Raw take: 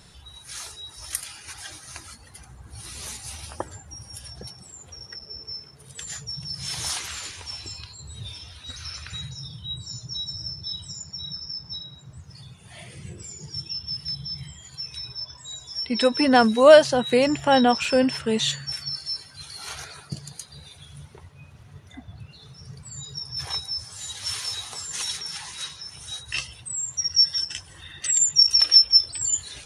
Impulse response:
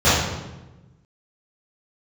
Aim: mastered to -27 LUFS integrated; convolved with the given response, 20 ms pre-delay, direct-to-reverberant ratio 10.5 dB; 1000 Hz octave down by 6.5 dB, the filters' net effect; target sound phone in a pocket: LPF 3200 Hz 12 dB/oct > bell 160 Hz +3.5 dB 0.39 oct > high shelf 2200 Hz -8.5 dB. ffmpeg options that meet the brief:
-filter_complex "[0:a]equalizer=f=1k:t=o:g=-8,asplit=2[a][b];[1:a]atrim=start_sample=2205,adelay=20[c];[b][c]afir=irnorm=-1:irlink=0,volume=-35dB[d];[a][d]amix=inputs=2:normalize=0,lowpass=3.2k,equalizer=f=160:t=o:w=0.39:g=3.5,highshelf=f=2.2k:g=-8.5,volume=-0.5dB"

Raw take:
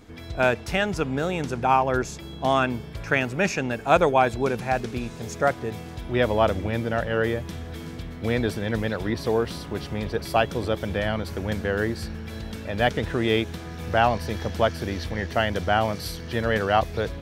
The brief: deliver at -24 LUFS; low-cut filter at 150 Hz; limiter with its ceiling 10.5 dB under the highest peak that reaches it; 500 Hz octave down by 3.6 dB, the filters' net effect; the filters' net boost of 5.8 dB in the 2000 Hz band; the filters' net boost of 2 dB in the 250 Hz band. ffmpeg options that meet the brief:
-af "highpass=150,equalizer=f=250:t=o:g=5,equalizer=f=500:t=o:g=-6.5,equalizer=f=2k:t=o:g=8,volume=2.5dB,alimiter=limit=-9.5dB:level=0:latency=1"

